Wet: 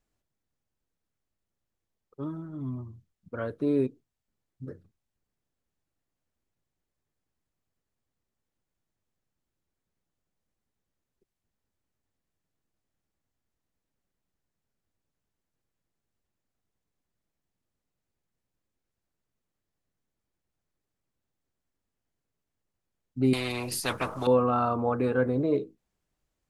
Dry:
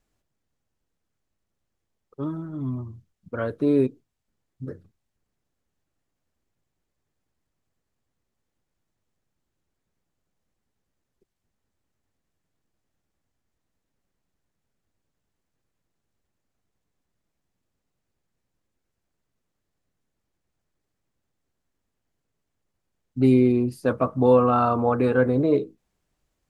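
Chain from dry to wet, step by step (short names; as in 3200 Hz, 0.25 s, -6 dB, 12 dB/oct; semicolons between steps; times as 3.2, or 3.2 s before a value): 23.33–24.27 spectral compressor 4:1; gain -5.5 dB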